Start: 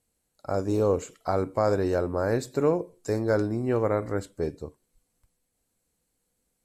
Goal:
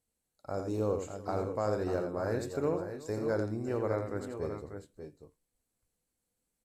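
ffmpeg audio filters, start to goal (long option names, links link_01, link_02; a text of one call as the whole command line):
ffmpeg -i in.wav -af "aecho=1:1:85|360|592|612:0.447|0.112|0.355|0.168,volume=-8.5dB" out.wav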